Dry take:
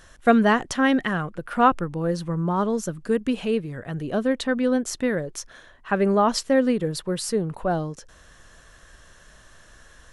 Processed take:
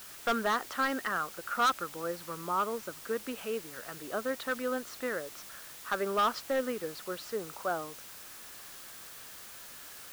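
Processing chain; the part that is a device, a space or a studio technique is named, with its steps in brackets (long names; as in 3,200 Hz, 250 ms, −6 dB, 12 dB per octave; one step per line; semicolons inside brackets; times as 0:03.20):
drive-through speaker (band-pass filter 380–3,700 Hz; parametric band 1,300 Hz +11 dB 0.45 octaves; hard clipping −14.5 dBFS, distortion −7 dB; white noise bed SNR 13 dB)
level −8.5 dB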